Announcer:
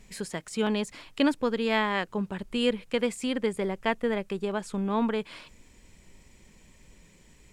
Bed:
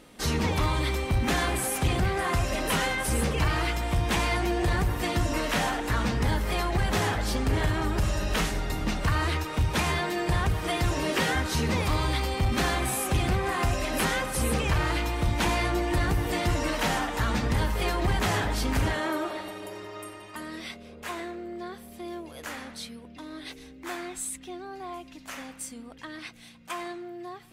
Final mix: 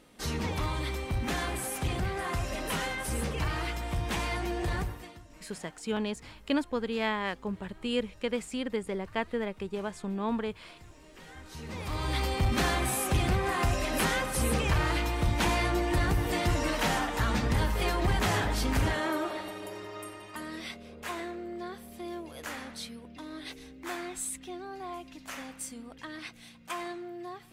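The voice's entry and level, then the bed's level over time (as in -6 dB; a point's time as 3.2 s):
5.30 s, -4.5 dB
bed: 4.81 s -6 dB
5.25 s -27.5 dB
11.13 s -27.5 dB
12.21 s -1.5 dB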